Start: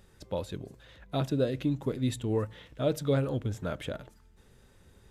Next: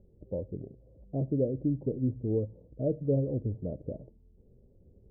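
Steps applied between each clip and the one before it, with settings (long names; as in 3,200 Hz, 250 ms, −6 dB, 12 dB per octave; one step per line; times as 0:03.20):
Butterworth low-pass 580 Hz 36 dB per octave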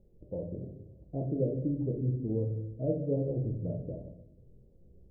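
rectangular room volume 200 cubic metres, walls mixed, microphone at 0.74 metres
level −3.5 dB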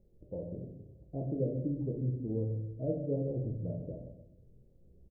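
single-tap delay 128 ms −11.5 dB
level −3 dB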